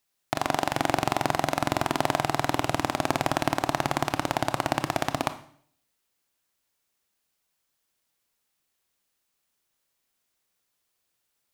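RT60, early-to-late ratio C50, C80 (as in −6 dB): 0.60 s, 13.5 dB, 17.5 dB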